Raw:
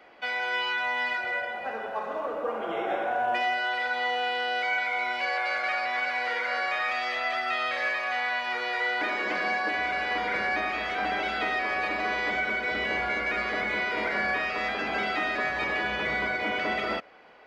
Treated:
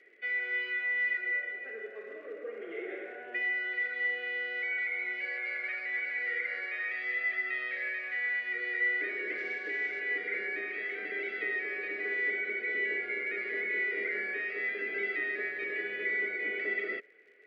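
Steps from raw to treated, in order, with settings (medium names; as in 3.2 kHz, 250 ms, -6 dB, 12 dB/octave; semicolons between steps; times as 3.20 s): 9.38–10.00 s: CVSD coder 32 kbps; crackle 62 per s -38 dBFS; two resonant band-passes 900 Hz, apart 2.3 oct; trim +1.5 dB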